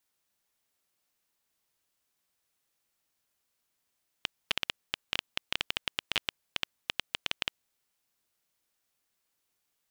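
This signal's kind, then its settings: random clicks 9.7/s -9.5 dBFS 3.26 s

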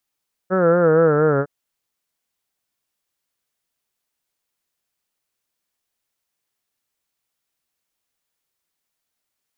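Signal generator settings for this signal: formant-synthesis vowel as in heard, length 0.96 s, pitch 183 Hz, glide -4.5 st, vibrato 4.3 Hz, vibrato depth 0.8 st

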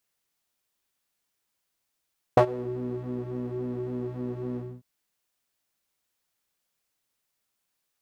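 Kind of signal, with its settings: synth patch with pulse-width modulation B2, oscillator 2 square, interval +19 st, detune 23 cents, oscillator 2 level -10 dB, noise -13 dB, filter bandpass, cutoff 170 Hz, Q 2.6, filter envelope 2 oct, filter decay 0.32 s, attack 5.3 ms, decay 0.08 s, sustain -23 dB, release 0.25 s, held 2.20 s, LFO 3.6 Hz, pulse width 41%, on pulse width 10%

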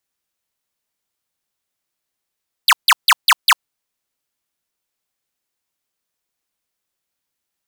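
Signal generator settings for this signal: burst of laser zaps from 5100 Hz, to 840 Hz, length 0.05 s square, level -9.5 dB, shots 5, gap 0.15 s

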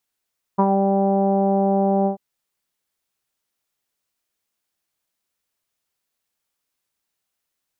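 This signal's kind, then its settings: synth note saw G3 24 dB/oct, low-pass 730 Hz, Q 4.5, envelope 0.5 oct, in 0.18 s, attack 15 ms, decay 0.06 s, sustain -3.5 dB, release 0.11 s, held 1.48 s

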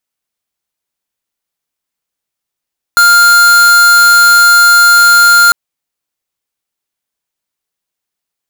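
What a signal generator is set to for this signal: tone square 1400 Hz -5 dBFS 2.55 s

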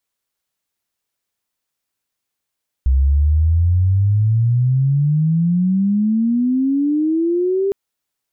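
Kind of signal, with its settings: chirp logarithmic 64 Hz -> 400 Hz -10.5 dBFS -> -14.5 dBFS 4.86 s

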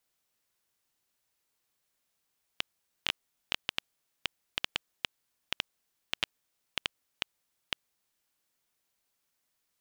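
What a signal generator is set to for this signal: random clicks 4/s -9.5 dBFS 5.49 s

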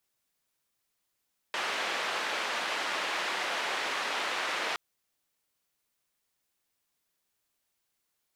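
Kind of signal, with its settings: noise band 470–2500 Hz, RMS -32.5 dBFS 3.22 s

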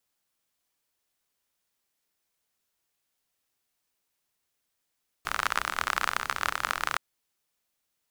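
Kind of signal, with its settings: rain from filtered ticks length 1.72 s, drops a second 42, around 1300 Hz, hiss -16 dB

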